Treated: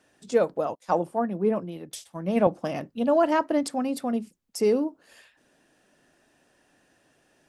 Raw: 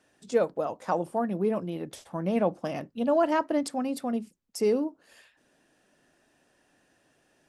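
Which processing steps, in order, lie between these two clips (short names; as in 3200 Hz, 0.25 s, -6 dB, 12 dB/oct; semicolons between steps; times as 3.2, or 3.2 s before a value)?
0.75–2.47 three-band expander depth 100%; gain +2.5 dB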